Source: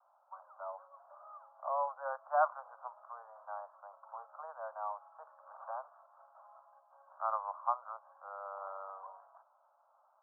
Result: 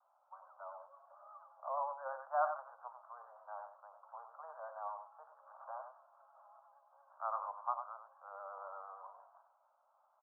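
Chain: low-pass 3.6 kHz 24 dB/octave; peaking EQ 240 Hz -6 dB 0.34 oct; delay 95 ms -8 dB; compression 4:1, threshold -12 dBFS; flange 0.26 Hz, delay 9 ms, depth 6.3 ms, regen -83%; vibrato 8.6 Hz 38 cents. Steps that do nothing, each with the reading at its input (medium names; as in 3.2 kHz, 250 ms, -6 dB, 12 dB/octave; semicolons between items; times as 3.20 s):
low-pass 3.6 kHz: input has nothing above 1.7 kHz; peaking EQ 240 Hz: input has nothing below 450 Hz; compression, threshold -12 dBFS: peak at its input -17.0 dBFS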